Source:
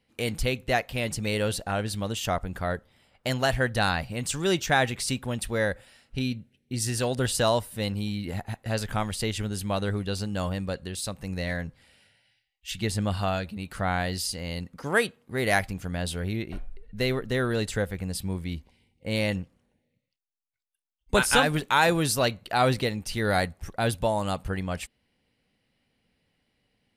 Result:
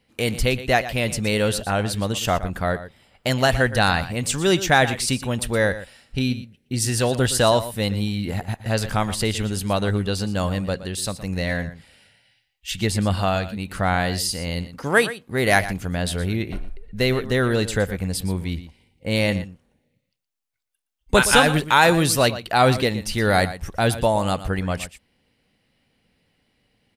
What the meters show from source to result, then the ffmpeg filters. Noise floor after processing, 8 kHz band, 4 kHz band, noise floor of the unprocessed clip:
-70 dBFS, +6.0 dB, +6.0 dB, -77 dBFS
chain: -af "aecho=1:1:118:0.2,volume=6dB"

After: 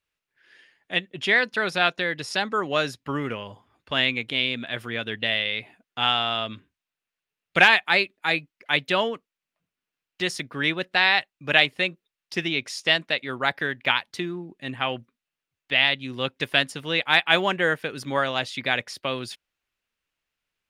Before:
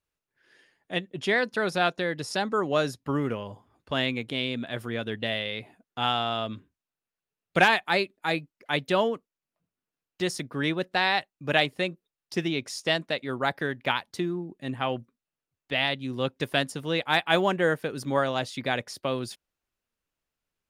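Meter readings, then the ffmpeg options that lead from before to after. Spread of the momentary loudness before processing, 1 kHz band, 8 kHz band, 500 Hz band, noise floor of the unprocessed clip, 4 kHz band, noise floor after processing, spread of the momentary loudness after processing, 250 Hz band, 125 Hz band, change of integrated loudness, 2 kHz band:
9 LU, +1.5 dB, +0.5 dB, -1.0 dB, under -85 dBFS, +6.5 dB, under -85 dBFS, 11 LU, -1.5 dB, -2.0 dB, +4.0 dB, +6.5 dB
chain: -af "equalizer=f=2.5k:w=0.64:g=10,volume=-2dB"

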